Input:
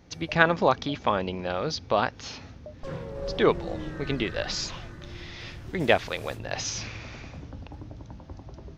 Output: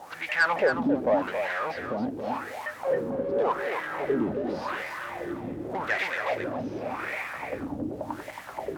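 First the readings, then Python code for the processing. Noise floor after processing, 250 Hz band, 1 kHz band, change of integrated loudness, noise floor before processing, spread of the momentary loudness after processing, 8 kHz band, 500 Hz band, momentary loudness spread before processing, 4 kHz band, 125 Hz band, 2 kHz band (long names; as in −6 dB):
−42 dBFS, +1.5 dB, −1.0 dB, −2.0 dB, −47 dBFS, 10 LU, below −10 dB, +0.5 dB, 19 LU, −9.0 dB, −8.0 dB, +1.5 dB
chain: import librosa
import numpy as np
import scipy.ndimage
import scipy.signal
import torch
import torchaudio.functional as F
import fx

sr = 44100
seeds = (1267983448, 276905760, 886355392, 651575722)

p1 = fx.env_lowpass(x, sr, base_hz=2000.0, full_db=-18.0)
p2 = fx.peak_eq(p1, sr, hz=670.0, db=8.0, octaves=0.91)
p3 = fx.notch(p2, sr, hz=670.0, q=15.0)
p4 = fx.dmg_noise_colour(p3, sr, seeds[0], colour='violet', level_db=-44.0)
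p5 = fx.fuzz(p4, sr, gain_db=44.0, gate_db=-51.0)
p6 = p4 + F.gain(torch.from_numpy(p5), -4.0).numpy()
p7 = fx.wah_lfo(p6, sr, hz=0.87, low_hz=240.0, high_hz=2100.0, q=4.8)
p8 = 10.0 ** (-15.0 / 20.0) * np.tanh(p7 / 10.0 ** (-15.0 / 20.0))
y = p8 + fx.echo_single(p8, sr, ms=272, db=-7.0, dry=0)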